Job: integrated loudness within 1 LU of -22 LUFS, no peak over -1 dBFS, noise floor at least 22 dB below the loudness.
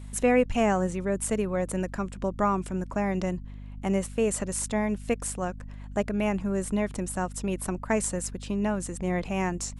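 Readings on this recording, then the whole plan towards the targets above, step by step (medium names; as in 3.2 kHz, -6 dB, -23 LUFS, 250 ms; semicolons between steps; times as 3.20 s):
hum 50 Hz; highest harmonic 250 Hz; hum level -38 dBFS; loudness -28.5 LUFS; peak level -11.5 dBFS; loudness target -22.0 LUFS
-> hum notches 50/100/150/200/250 Hz; trim +6.5 dB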